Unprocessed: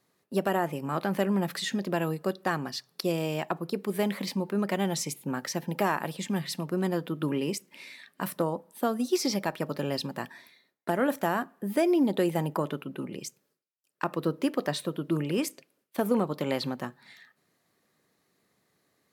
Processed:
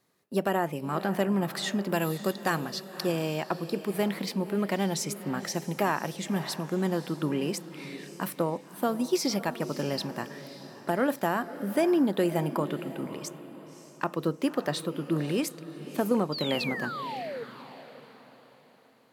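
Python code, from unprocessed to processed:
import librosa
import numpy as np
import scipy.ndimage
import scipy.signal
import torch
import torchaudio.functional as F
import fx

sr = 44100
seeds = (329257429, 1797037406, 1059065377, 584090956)

p1 = fx.high_shelf(x, sr, hz=3800.0, db=10.0, at=(1.89, 2.61))
p2 = fx.spec_paint(p1, sr, seeds[0], shape='fall', start_s=16.32, length_s=1.12, low_hz=440.0, high_hz=4900.0, level_db=-36.0)
y = p2 + fx.echo_diffused(p2, sr, ms=571, feedback_pct=40, wet_db=-13.0, dry=0)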